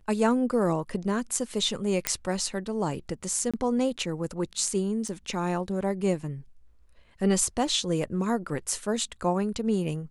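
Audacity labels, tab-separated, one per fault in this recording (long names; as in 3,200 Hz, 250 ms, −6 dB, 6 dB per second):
2.070000	2.070000	click −5 dBFS
3.510000	3.540000	drop-out 26 ms
5.080000	5.080000	drop-out 4.9 ms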